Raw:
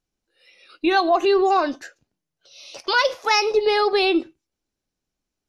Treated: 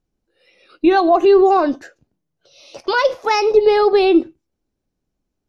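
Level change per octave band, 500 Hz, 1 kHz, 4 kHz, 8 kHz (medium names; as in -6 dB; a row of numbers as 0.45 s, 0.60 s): +7.0 dB, +3.5 dB, -3.0 dB, no reading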